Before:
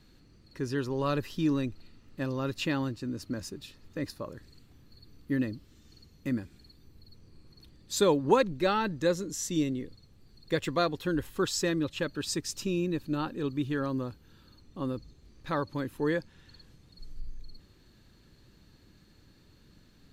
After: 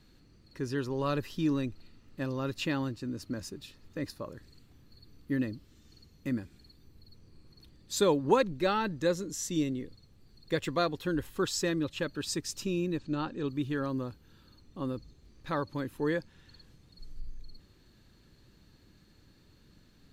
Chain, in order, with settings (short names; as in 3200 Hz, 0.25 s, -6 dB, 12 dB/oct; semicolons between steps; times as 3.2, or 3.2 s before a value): 12.98–13.48 steep low-pass 7900 Hz; gain -1.5 dB